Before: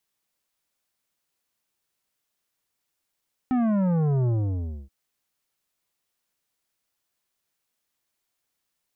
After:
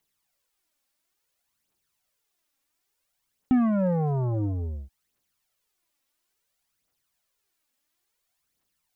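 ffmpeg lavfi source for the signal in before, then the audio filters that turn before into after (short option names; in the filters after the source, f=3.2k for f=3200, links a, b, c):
-f lavfi -i "aevalsrc='0.0891*clip((1.38-t)/0.62,0,1)*tanh(3.55*sin(2*PI*260*1.38/log(65/260)*(exp(log(65/260)*t/1.38)-1)))/tanh(3.55)':d=1.38:s=44100"
-af "aphaser=in_gain=1:out_gain=1:delay=3.8:decay=0.56:speed=0.58:type=triangular"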